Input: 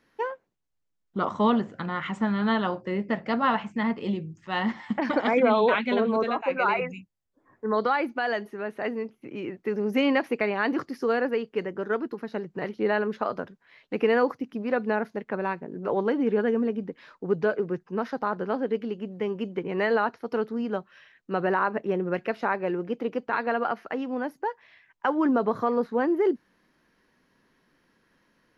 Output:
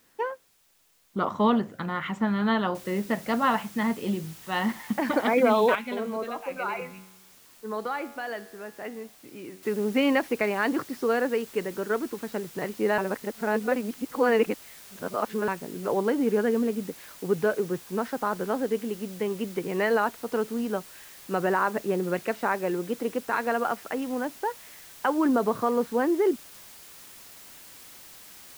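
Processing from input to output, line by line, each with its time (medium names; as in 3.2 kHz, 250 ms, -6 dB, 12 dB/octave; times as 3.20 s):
2.75 s: noise floor step -65 dB -48 dB
5.75–9.63 s: feedback comb 94 Hz, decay 1.1 s
12.98–15.48 s: reverse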